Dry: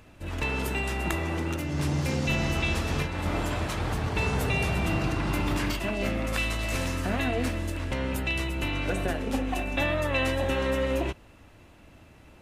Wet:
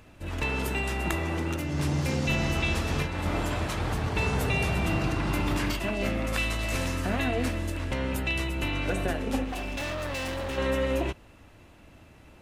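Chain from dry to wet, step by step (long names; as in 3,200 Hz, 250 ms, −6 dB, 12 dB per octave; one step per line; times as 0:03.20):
0:09.44–0:10.58: hard clipping −30.5 dBFS, distortion −14 dB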